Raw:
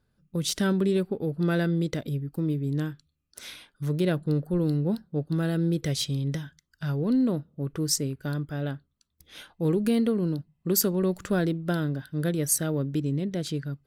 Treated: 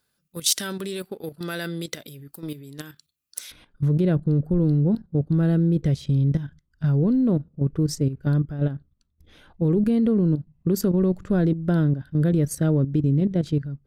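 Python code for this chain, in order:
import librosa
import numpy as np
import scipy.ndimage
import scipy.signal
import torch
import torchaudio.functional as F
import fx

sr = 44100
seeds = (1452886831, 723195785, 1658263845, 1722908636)

y = fx.tilt_eq(x, sr, slope=fx.steps((0.0, 3.5), (3.5, -3.0)))
y = fx.level_steps(y, sr, step_db=11)
y = y * 10.0 ** (3.0 / 20.0)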